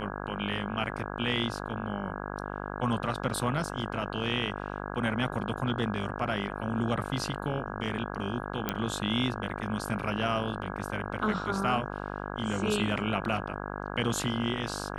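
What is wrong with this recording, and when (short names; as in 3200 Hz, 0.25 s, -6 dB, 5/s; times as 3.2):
buzz 50 Hz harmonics 33 -37 dBFS
8.69 pop -13 dBFS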